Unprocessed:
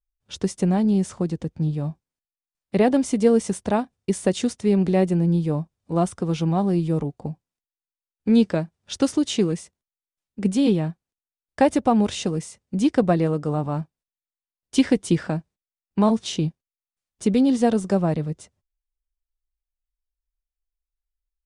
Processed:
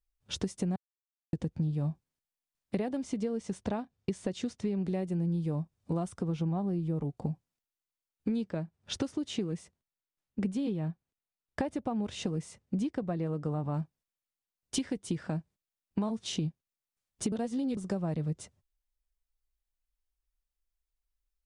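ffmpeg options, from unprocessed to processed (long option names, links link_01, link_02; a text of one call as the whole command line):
ffmpeg -i in.wav -filter_complex "[0:a]asettb=1/sr,asplit=3[link_01][link_02][link_03];[link_01]atrim=end=3.034[link_04];[link_02]atrim=start=3.03:end=4.85,asetpts=PTS-STARTPTS,afade=type=in:duration=0.004:curve=qsin,afade=type=out:start_time=1.816:duration=0.004:curve=qsin,lowpass=6500[link_05];[link_03]atrim=start=4.846[link_06];[link_04][link_05]acrossfade=duration=0.004:curve1=hsin:curve2=qsin[link_07];[link_07][link_06]acrossfade=duration=0.004:curve1=qsin:curve2=hsin,asettb=1/sr,asplit=3[link_08][link_09][link_10];[link_08]atrim=end=6.224[link_11];[link_09]atrim=start=6.22:end=7.02,asetpts=PTS-STARTPTS,afade=type=in:duration=0.004:curve=qsin,afade=type=out:start_time=0.796:duration=0.004:curve=qsin,highshelf=frequency=2400:gain=-9[link_12];[link_10]atrim=start=7.016[link_13];[link_11][link_12]acrossfade=duration=0.004:curve1=hsin:curve2=qsin[link_14];[link_14][link_13]acrossfade=duration=0.004:curve1=qsin:curve2=hsin,asettb=1/sr,asplit=3[link_15][link_16][link_17];[link_15]atrim=end=8.444[link_18];[link_16]atrim=start=8.44:end=13.74,asetpts=PTS-STARTPTS,afade=type=in:duration=0.004:curve=qsin,afade=type=out:start_time=5.296:duration=0.004:curve=qsin,highshelf=frequency=4300:gain=-7.5[link_19];[link_17]atrim=start=13.736[link_20];[link_18][link_19]acrossfade=duration=0.004:curve1=hsin:curve2=qsin[link_21];[link_21][link_20]acrossfade=duration=0.004:curve1=qsin:curve2=hsin,asplit=5[link_22][link_23][link_24][link_25][link_26];[link_22]atrim=end=0.76,asetpts=PTS-STARTPTS,afade=type=out:start_time=0.756:duration=0.004:curve=hsin[link_27];[link_23]atrim=start=0.76:end=1.33,asetpts=PTS-STARTPTS,volume=0[link_28];[link_24]atrim=start=1.33:end=17.322,asetpts=PTS-STARTPTS,afade=type=in:duration=0.004:curve=hsin[link_29];[link_25]atrim=start=17.318:end=17.772,asetpts=PTS-STARTPTS,areverse[link_30];[link_26]atrim=start=17.768[link_31];[link_27][link_28][link_29]concat=n=3:v=0:a=1[link_32];[link_32][link_30]acrossfade=duration=0.004:curve1=hsin:curve2=hsin[link_33];[link_33][link_31]acrossfade=duration=0.004:curve1=hsin:curve2=hsin,acompressor=threshold=-31dB:ratio=10,equalizer=frequency=120:width_type=o:width=1.6:gain=4" out.wav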